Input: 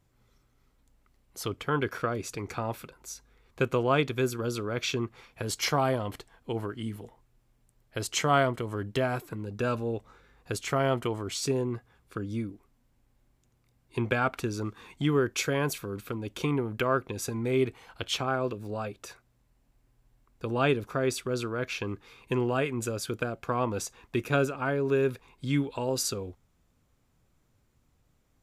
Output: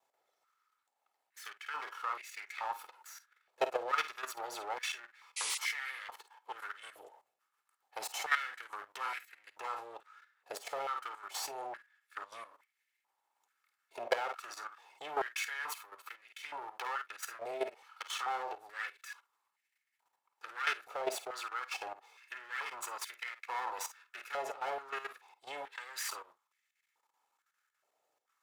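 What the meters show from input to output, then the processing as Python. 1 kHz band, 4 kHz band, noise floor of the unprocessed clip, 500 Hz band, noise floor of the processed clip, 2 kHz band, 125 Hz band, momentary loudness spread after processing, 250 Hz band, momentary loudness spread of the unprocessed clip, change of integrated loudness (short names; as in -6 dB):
-5.0 dB, -7.0 dB, -69 dBFS, -14.0 dB, -84 dBFS, -4.5 dB, under -40 dB, 15 LU, -28.0 dB, 12 LU, -9.5 dB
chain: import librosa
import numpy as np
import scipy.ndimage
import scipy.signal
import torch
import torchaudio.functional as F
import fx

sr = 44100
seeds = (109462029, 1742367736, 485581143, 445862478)

y = fx.lower_of_two(x, sr, delay_ms=2.3)
y = fx.rider(y, sr, range_db=4, speed_s=2.0)
y = fx.room_early_taps(y, sr, ms=(39, 51), db=(-18.0, -11.0))
y = fx.level_steps(y, sr, step_db=12)
y = fx.spec_paint(y, sr, seeds[0], shape='noise', start_s=5.36, length_s=0.22, low_hz=1900.0, high_hz=11000.0, level_db=-34.0)
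y = fx.filter_held_highpass(y, sr, hz=2.3, low_hz=660.0, high_hz=2000.0)
y = y * librosa.db_to_amplitude(-3.5)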